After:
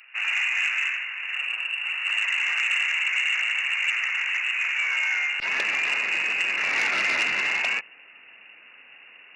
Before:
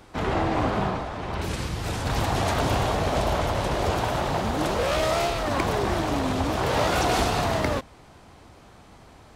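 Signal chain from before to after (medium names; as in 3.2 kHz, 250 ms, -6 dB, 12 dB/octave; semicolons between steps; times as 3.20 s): frequency inversion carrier 2.8 kHz; high-pass 1.3 kHz 12 dB/octave, from 5.40 s 220 Hz; transformer saturation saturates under 3.2 kHz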